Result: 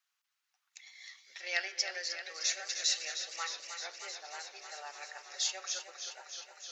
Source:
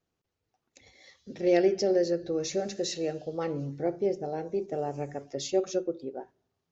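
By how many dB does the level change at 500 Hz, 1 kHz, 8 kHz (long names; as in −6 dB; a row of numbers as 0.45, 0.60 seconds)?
−24.0 dB, −7.5 dB, can't be measured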